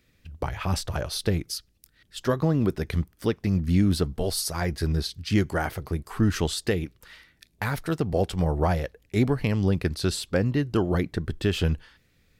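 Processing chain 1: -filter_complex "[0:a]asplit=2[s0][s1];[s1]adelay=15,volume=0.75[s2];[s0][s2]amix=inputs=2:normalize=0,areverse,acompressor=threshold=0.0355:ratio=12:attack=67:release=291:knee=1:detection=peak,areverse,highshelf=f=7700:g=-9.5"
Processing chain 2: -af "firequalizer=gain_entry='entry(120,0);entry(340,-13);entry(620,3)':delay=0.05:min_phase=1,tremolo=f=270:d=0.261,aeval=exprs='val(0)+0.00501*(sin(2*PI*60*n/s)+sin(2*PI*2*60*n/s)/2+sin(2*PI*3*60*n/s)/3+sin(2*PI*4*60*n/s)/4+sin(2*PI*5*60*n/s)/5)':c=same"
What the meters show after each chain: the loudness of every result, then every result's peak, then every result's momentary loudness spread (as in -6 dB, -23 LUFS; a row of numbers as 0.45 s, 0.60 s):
-31.5 LUFS, -29.0 LUFS; -13.5 dBFS, -10.5 dBFS; 5 LU, 9 LU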